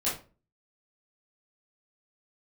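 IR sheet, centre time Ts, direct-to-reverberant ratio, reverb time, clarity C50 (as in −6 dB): 35 ms, −9.5 dB, 0.35 s, 6.5 dB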